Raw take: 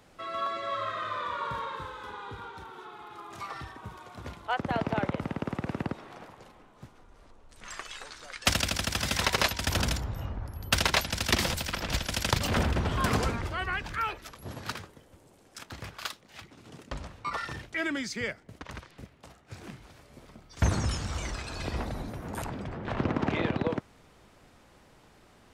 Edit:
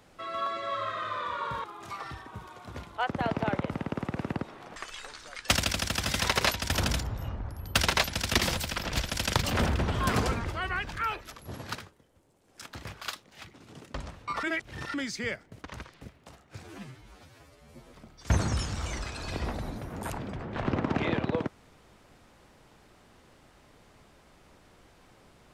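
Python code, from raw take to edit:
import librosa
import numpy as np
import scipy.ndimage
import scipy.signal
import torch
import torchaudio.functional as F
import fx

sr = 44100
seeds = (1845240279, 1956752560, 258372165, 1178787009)

y = fx.edit(x, sr, fx.cut(start_s=1.64, length_s=1.5),
    fx.cut(start_s=6.26, length_s=1.47),
    fx.fade_down_up(start_s=14.67, length_s=0.94, db=-9.0, fade_s=0.22),
    fx.reverse_span(start_s=17.4, length_s=0.51),
    fx.stretch_span(start_s=19.61, length_s=0.65, factor=2.0), tone=tone)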